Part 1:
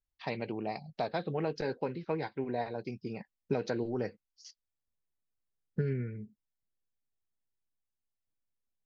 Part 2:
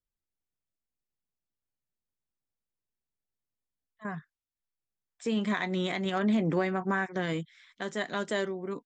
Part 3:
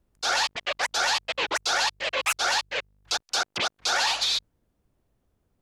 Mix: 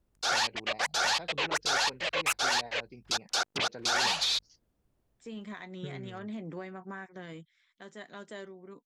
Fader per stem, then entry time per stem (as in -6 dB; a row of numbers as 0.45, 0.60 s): -10.5, -13.0, -3.5 dB; 0.05, 0.00, 0.00 s